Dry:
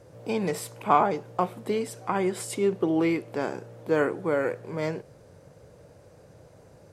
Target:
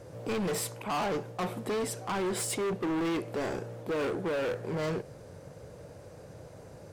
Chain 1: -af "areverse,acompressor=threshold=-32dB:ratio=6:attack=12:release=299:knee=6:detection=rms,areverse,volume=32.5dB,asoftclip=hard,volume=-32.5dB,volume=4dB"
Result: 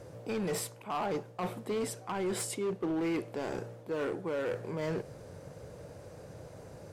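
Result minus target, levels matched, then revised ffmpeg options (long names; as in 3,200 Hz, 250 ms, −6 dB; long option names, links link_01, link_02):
downward compressor: peak gain reduction +9 dB
-af "areverse,acompressor=threshold=-21dB:ratio=6:attack=12:release=299:knee=6:detection=rms,areverse,volume=32.5dB,asoftclip=hard,volume=-32.5dB,volume=4dB"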